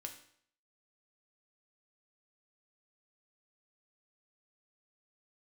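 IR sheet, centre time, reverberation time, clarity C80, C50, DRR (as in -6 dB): 15 ms, 0.60 s, 13.0 dB, 10.0 dB, 3.5 dB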